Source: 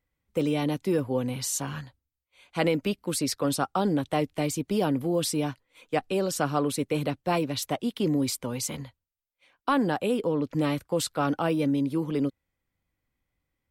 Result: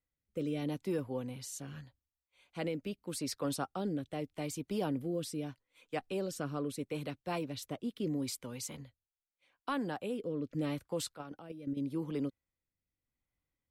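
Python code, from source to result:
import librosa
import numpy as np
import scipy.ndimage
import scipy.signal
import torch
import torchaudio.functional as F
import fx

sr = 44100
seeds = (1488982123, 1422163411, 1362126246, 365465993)

y = fx.level_steps(x, sr, step_db=12, at=(11.11, 11.77))
y = fx.rotary(y, sr, hz=0.8)
y = y * librosa.db_to_amplitude(-8.5)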